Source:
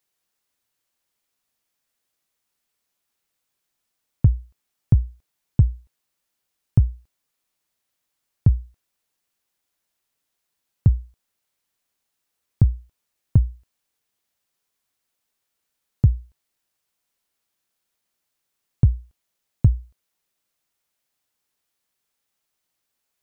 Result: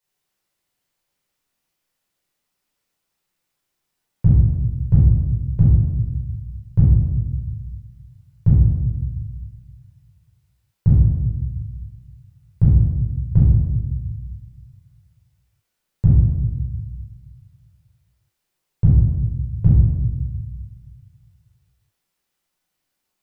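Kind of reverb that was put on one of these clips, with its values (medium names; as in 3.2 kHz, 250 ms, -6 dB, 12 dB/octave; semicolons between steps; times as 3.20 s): simulated room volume 740 m³, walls mixed, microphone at 4.9 m; trim -7.5 dB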